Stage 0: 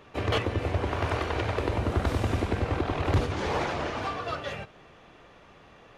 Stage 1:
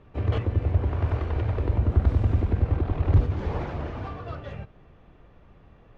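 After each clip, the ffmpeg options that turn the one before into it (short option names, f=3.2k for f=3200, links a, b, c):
-af "aemphasis=mode=reproduction:type=riaa,volume=-7dB"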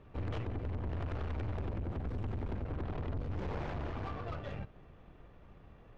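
-af "acompressor=threshold=-23dB:ratio=2.5,aeval=exprs='(tanh(50.1*val(0)+0.55)-tanh(0.55))/50.1':c=same,volume=-1dB"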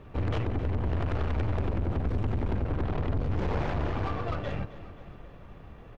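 -af "aecho=1:1:266|532|798|1064|1330|1596:0.168|0.0957|0.0545|0.0311|0.0177|0.0101,volume=8.5dB"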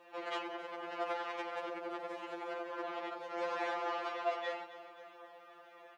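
-af "highpass=f=450:w=0.5412,highpass=f=450:w=1.3066,afftfilt=real='re*2.83*eq(mod(b,8),0)':imag='im*2.83*eq(mod(b,8),0)':win_size=2048:overlap=0.75,volume=2dB"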